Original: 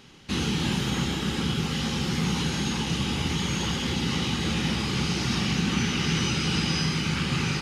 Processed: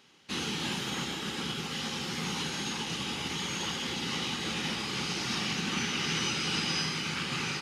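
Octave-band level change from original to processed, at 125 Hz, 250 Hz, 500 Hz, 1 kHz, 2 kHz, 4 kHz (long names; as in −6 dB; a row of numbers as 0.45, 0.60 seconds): −12.5, −10.0, −6.0, −3.5, −3.0, −3.0 decibels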